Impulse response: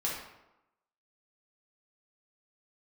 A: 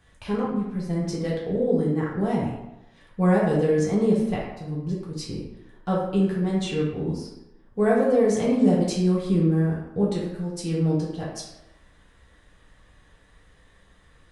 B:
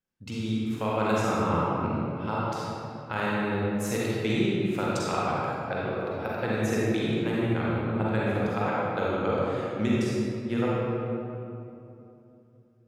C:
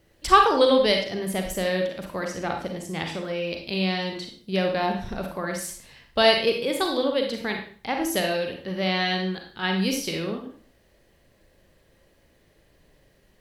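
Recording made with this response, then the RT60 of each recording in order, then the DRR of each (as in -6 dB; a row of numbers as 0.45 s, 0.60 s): A; 0.95 s, 2.8 s, 0.45 s; -5.5 dB, -7.0 dB, 2.5 dB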